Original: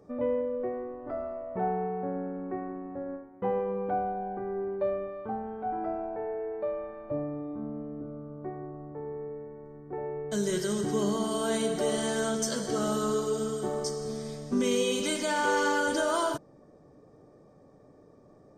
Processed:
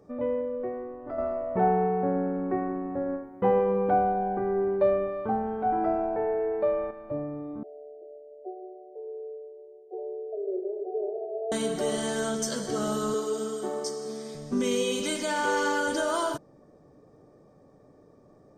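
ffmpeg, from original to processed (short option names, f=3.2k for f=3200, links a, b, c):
-filter_complex "[0:a]asettb=1/sr,asplit=3[a][b][c];[a]atrim=end=1.184[d];[b]atrim=start=1.18:end=6.91,asetpts=PTS-STARTPTS,afade=t=in:d=0.004:c=qsin,afade=t=out:st=5.726:d=0.004:c=qsin,acontrast=69[e];[c]atrim=start=6.906[f];[d][e]acrossfade=d=0.004:c1=hsin:c2=qsin[g];[g][f]acrossfade=d=0.004:c1=qsin:c2=hsin,asettb=1/sr,asplit=3[h][i][j];[h]atrim=end=7.634[k];[i]atrim=start=7.63:end=11.52,asetpts=PTS-STARTPTS,afade=t=in:d=0.004:c=qsin,afade=t=out:st=3.886:d=0.004:c=qsin,asuperpass=centerf=520:order=20:qfactor=1.2[l];[j]atrim=start=11.516[m];[k][l]acrossfade=d=0.004:c1=hsin:c2=qsin[n];[n][m]acrossfade=d=0.004:c1=qsin:c2=hsin,asettb=1/sr,asplit=3[o][p][q];[o]atrim=end=13.144[r];[p]atrim=start=13.14:end=14.35,asetpts=PTS-STARTPTS,afade=t=in:d=0.004:c=qsin,afade=t=out:st=1.206:d=0.004:c=qsin,highpass=f=210:w=0.5412,highpass=f=210:w=1.3066[s];[q]atrim=start=14.346[t];[r][s]acrossfade=d=0.004:c1=hsin:c2=qsin[u];[u][t]acrossfade=d=0.004:c1=qsin:c2=hsin"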